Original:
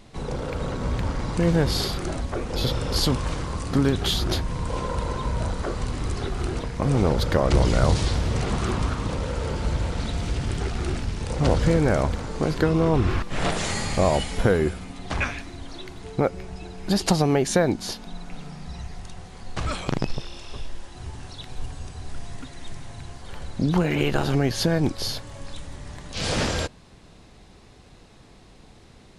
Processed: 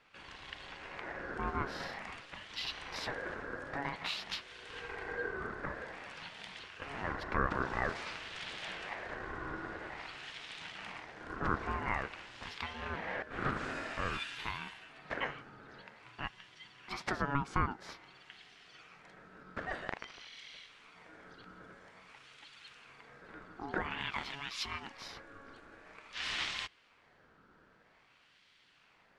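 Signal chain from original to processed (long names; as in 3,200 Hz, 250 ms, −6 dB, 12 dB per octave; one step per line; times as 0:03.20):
auto-filter band-pass sine 0.5 Hz 880–2,700 Hz
ring modulation 560 Hz
level +1 dB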